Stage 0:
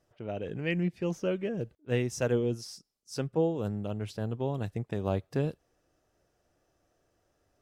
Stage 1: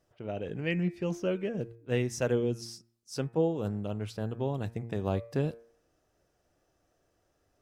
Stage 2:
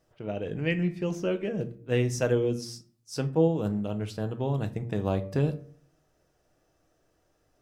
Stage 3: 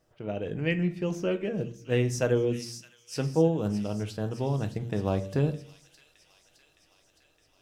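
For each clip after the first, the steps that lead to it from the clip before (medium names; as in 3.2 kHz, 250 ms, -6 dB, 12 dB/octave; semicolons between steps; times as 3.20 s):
de-hum 115.7 Hz, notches 22
simulated room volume 240 m³, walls furnished, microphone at 0.55 m; trim +2.5 dB
feedback echo behind a high-pass 614 ms, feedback 68%, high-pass 3.1 kHz, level -9.5 dB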